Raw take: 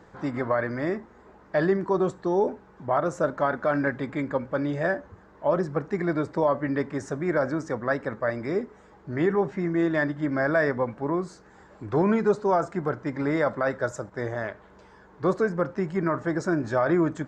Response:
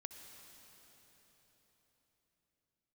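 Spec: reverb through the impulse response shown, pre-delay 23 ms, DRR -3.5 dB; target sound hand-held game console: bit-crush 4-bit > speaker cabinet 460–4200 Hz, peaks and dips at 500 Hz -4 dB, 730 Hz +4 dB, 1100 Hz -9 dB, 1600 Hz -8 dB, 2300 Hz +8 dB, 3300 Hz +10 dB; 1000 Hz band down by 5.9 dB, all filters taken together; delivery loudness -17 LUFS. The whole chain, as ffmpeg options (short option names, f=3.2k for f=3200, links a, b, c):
-filter_complex "[0:a]equalizer=f=1k:t=o:g=-6.5,asplit=2[a][b];[1:a]atrim=start_sample=2205,adelay=23[c];[b][c]afir=irnorm=-1:irlink=0,volume=8dB[d];[a][d]amix=inputs=2:normalize=0,acrusher=bits=3:mix=0:aa=0.000001,highpass=460,equalizer=f=500:t=q:w=4:g=-4,equalizer=f=730:t=q:w=4:g=4,equalizer=f=1.1k:t=q:w=4:g=-9,equalizer=f=1.6k:t=q:w=4:g=-8,equalizer=f=2.3k:t=q:w=4:g=8,equalizer=f=3.3k:t=q:w=4:g=10,lowpass=f=4.2k:w=0.5412,lowpass=f=4.2k:w=1.3066,volume=6.5dB"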